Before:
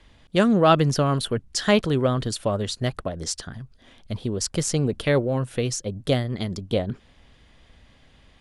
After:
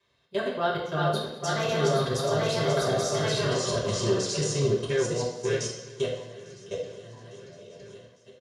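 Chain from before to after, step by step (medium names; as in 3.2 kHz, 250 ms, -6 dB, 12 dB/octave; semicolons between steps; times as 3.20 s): backward echo that repeats 448 ms, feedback 66%, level -4.5 dB; Doppler pass-by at 3.43 s, 25 m/s, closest 5.3 m; high-pass 200 Hz 6 dB/octave; treble shelf 2.6 kHz +7.5 dB; comb 1.9 ms, depth 44%; level held to a coarse grid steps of 21 dB; thinning echo 852 ms, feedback 57%, level -24 dB; reverberation RT60 0.75 s, pre-delay 3 ms, DRR -9 dB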